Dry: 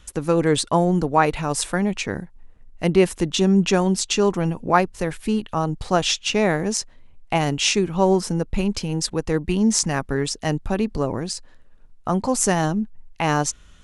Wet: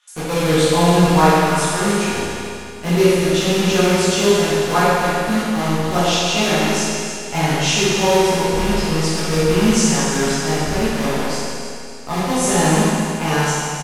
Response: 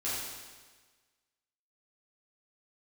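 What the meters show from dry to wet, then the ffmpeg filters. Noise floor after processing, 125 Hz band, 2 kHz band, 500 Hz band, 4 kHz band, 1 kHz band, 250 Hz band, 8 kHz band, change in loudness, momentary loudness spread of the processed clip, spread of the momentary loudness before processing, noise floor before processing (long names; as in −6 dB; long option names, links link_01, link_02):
−30 dBFS, +4.5 dB, +7.0 dB, +5.0 dB, +6.0 dB, +5.0 dB, +3.5 dB, +4.5 dB, +4.5 dB, 9 LU, 8 LU, −48 dBFS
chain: -filter_complex "[0:a]acrossover=split=750|3800[link_01][link_02][link_03];[link_01]acrusher=bits=3:mix=0:aa=0.000001[link_04];[link_04][link_02][link_03]amix=inputs=3:normalize=0,aecho=1:1:289|578|867|1156|1445:0.266|0.122|0.0563|0.0259|0.0119[link_05];[1:a]atrim=start_sample=2205,asetrate=26901,aresample=44100[link_06];[link_05][link_06]afir=irnorm=-1:irlink=0,volume=-6dB"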